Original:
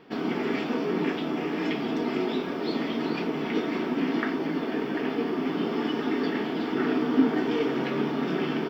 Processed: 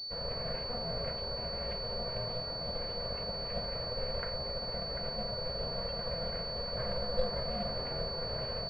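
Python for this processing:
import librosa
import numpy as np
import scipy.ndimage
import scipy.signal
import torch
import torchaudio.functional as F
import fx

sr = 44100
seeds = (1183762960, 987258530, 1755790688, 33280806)

y = x * np.sin(2.0 * np.pi * 250.0 * np.arange(len(x)) / sr)
y = fx.pwm(y, sr, carrier_hz=4500.0)
y = F.gain(torch.from_numpy(y), -7.5).numpy()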